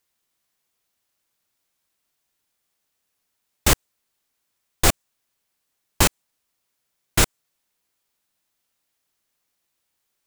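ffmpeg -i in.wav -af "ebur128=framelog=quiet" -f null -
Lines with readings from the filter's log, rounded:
Integrated loudness:
  I:         -21.5 LUFS
  Threshold: -31.7 LUFS
Loudness range:
  LRA:         5.0 LU
  Threshold: -47.2 LUFS
  LRA low:   -29.9 LUFS
  LRA high:  -24.9 LUFS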